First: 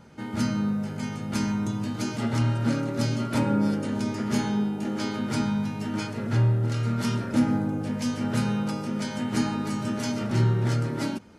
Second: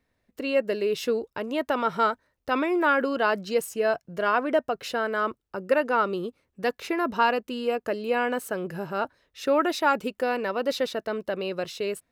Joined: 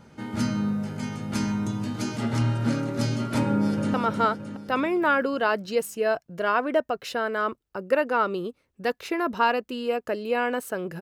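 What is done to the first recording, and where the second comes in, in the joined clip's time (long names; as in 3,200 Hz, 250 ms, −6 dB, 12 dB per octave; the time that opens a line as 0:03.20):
first
0:03.46–0:03.94: delay throw 310 ms, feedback 55%, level −6 dB
0:03.94: continue with second from 0:01.73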